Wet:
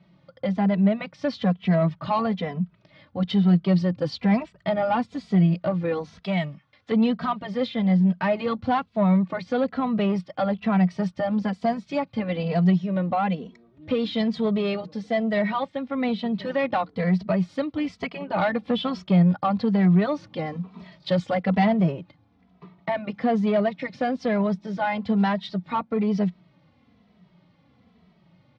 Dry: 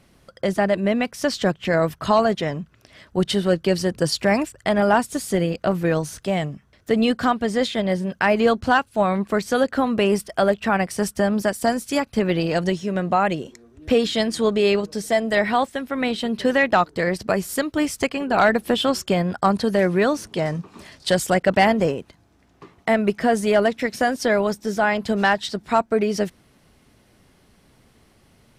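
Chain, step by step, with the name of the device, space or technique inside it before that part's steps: barber-pole flanger into a guitar amplifier (endless flanger 2.7 ms -1.1 Hz; soft clip -14 dBFS, distortion -17 dB; speaker cabinet 90–3800 Hz, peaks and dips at 180 Hz +10 dB, 380 Hz -8 dB, 1600 Hz -8 dB, 2800 Hz -5 dB); 6.23–6.92 tilt shelf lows -7.5 dB, about 690 Hz

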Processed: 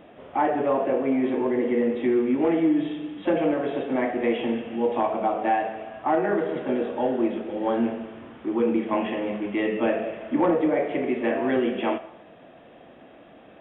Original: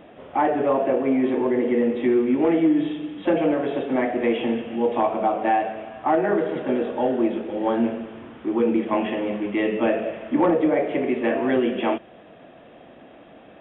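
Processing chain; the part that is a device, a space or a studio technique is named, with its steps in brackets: filtered reverb send (on a send: HPF 560 Hz + LPF 3200 Hz 12 dB/oct + reverb RT60 0.70 s, pre-delay 21 ms, DRR 9 dB); on the sum: gain -2.5 dB

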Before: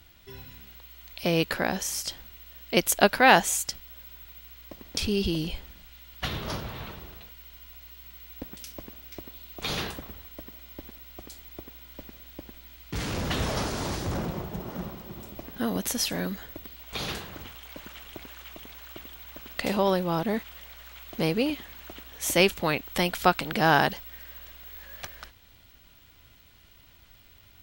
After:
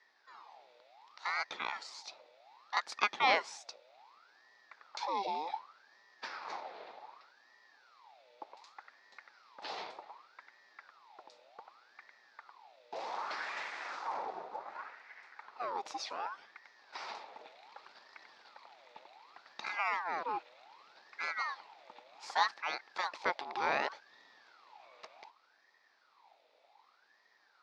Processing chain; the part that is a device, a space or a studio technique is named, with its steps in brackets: voice changer toy (ring modulator with a swept carrier 1200 Hz, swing 55%, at 0.66 Hz; speaker cabinet 440–5000 Hz, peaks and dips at 850 Hz +7 dB, 1600 Hz -4 dB, 3000 Hz -7 dB); gain -7.5 dB

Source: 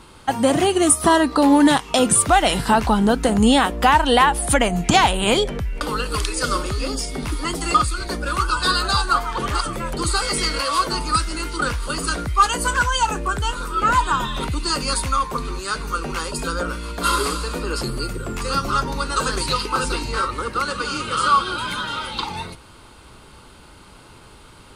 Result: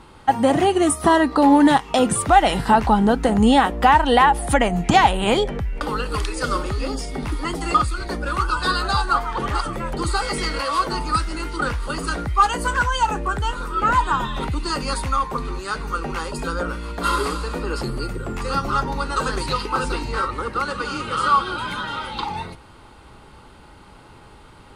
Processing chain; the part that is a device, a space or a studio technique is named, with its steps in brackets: inside a helmet (high shelf 3500 Hz -9 dB; small resonant body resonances 820/1900 Hz, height 7 dB)

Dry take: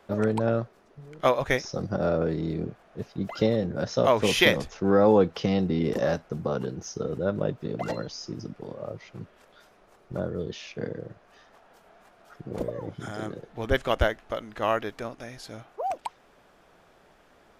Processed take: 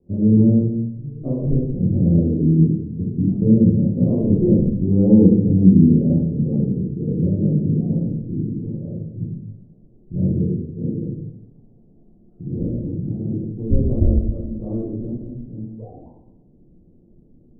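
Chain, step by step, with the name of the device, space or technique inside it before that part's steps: next room (LPF 290 Hz 24 dB/oct; reverb RT60 0.90 s, pre-delay 11 ms, DRR -7.5 dB); gain +6 dB

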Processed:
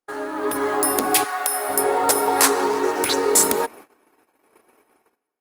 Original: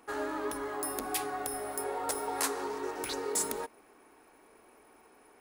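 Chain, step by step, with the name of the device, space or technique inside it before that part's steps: 1.23–1.68 HPF 1200 Hz -> 550 Hz 12 dB/oct; video call (HPF 110 Hz 12 dB/oct; AGC gain up to 10.5 dB; gate -46 dBFS, range -33 dB; gain +5 dB; Opus 32 kbps 48000 Hz)

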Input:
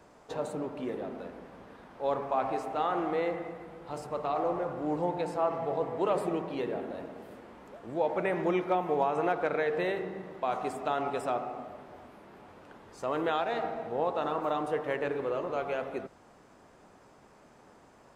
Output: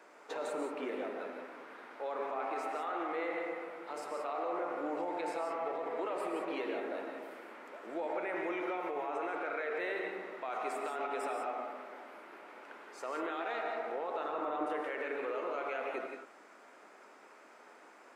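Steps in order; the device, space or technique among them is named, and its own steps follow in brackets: laptop speaker (HPF 290 Hz 24 dB/oct; bell 1400 Hz +6 dB 0.47 oct; bell 2200 Hz +7.5 dB 0.55 oct; limiter -28 dBFS, peak gain reduction 13 dB); 14.29–14.7 tilt -2.5 dB/oct; non-linear reverb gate 0.2 s rising, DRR 3.5 dB; gain -2 dB

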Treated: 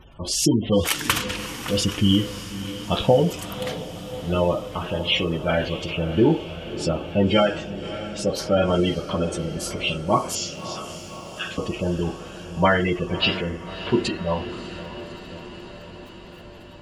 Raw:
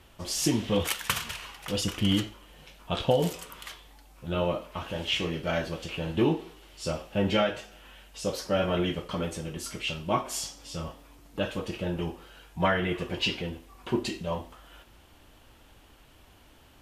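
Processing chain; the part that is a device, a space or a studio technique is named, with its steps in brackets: 10.35–11.58 Chebyshev band-pass 1200–7100 Hz, order 5; video cassette with head-switching buzz (buzz 50 Hz, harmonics 3, -61 dBFS 0 dB/oct; white noise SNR 31 dB); spectral gate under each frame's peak -20 dB strong; diffused feedback echo 0.604 s, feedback 69%, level -13 dB; gain +7 dB

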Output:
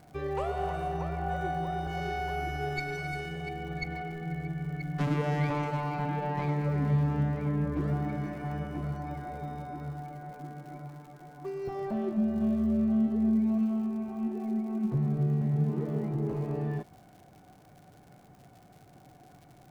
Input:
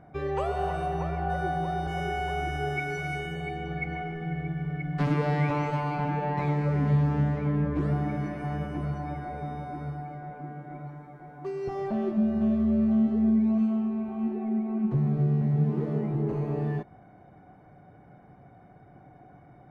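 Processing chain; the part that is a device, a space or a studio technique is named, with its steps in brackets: record under a worn stylus (tracing distortion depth 0.067 ms; crackle 130/s -44 dBFS; pink noise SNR 41 dB); gain -3 dB

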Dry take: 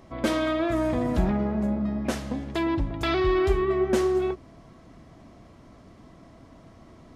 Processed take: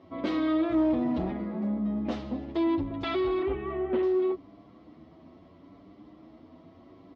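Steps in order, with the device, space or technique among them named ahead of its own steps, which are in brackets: 3.42–4.03 steep low-pass 3100 Hz; barber-pole flanger into a guitar amplifier (endless flanger 8.7 ms +0.74 Hz; soft clip -22.5 dBFS, distortion -15 dB; speaker cabinet 89–4200 Hz, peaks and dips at 130 Hz -8 dB, 300 Hz +8 dB, 1600 Hz -8 dB, 2500 Hz -3 dB)

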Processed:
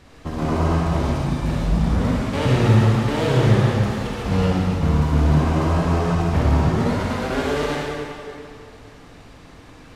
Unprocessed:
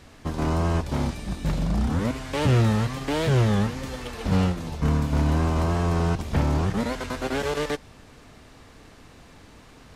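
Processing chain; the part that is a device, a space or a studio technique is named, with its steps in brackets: swimming-pool hall (reverb RT60 2.5 s, pre-delay 41 ms, DRR -3.5 dB; high shelf 4800 Hz -5 dB)

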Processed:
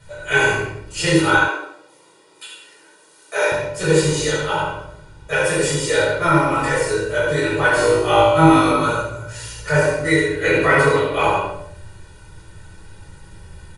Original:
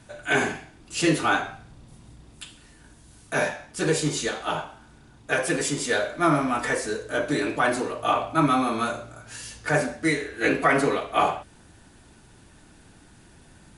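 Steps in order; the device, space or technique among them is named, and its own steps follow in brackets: microphone above a desk (comb 2.1 ms, depth 81%; reverb RT60 0.50 s, pre-delay 59 ms, DRR 4 dB); 7.74–8.71 flutter echo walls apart 3.2 m, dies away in 0.59 s; shoebox room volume 740 m³, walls furnished, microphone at 6.1 m; 1.48–3.52 HPF 320 Hz 24 dB/oct; gain -4.5 dB

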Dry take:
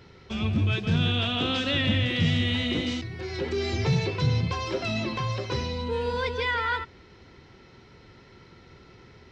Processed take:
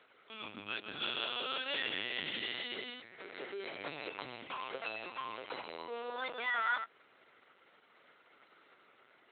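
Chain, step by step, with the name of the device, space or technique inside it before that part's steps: talking toy (LPC vocoder at 8 kHz pitch kept; HPF 550 Hz 12 dB/oct; bell 1400 Hz +4 dB 0.37 oct); gain -8 dB

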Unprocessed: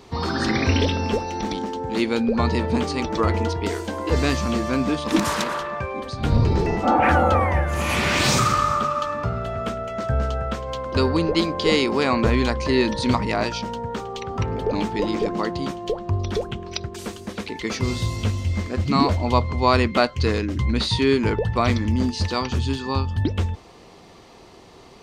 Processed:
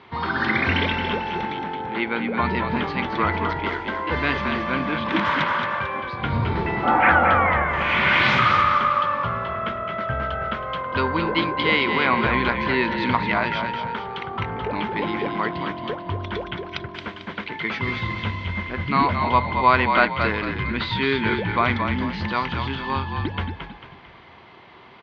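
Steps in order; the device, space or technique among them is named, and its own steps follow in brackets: 1.45–2.42 tone controls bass -4 dB, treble -10 dB; frequency-shifting delay pedal into a guitar cabinet (frequency-shifting echo 0.223 s, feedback 41%, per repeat -43 Hz, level -6 dB; speaker cabinet 93–3600 Hz, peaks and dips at 280 Hz -3 dB, 460 Hz -4 dB, 990 Hz +7 dB, 1500 Hz +9 dB, 2100 Hz +9 dB, 3200 Hz +6 dB); gain -3 dB

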